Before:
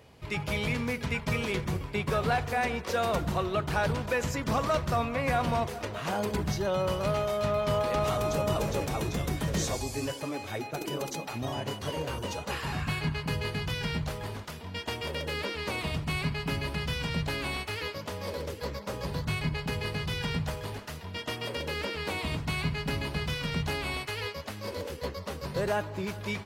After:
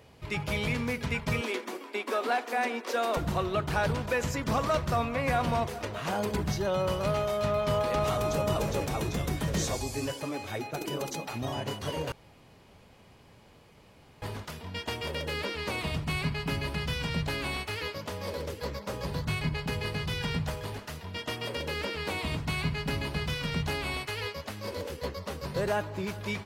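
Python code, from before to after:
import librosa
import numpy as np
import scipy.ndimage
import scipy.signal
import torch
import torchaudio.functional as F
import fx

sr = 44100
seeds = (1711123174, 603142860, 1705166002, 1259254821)

y = fx.cheby1_highpass(x, sr, hz=230.0, order=6, at=(1.41, 3.17))
y = fx.edit(y, sr, fx.room_tone_fill(start_s=12.12, length_s=2.1), tone=tone)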